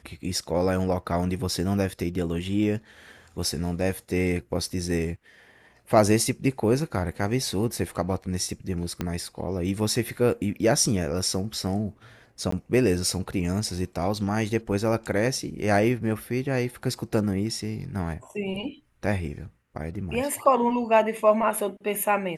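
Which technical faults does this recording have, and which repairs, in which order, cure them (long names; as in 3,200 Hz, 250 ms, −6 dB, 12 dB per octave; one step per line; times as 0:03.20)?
0:09.01: click −14 dBFS
0:12.51–0:12.52: drop-out 14 ms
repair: click removal
repair the gap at 0:12.51, 14 ms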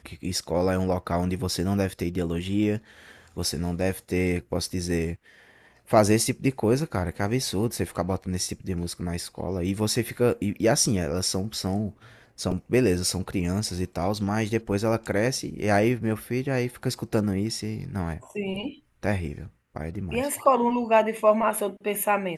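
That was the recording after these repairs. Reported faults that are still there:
0:09.01: click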